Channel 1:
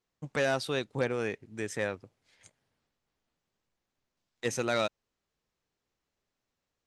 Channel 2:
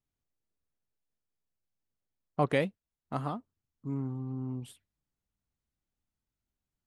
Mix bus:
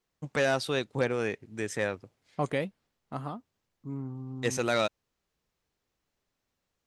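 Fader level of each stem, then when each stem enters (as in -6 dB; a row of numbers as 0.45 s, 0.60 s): +2.0 dB, -2.5 dB; 0.00 s, 0.00 s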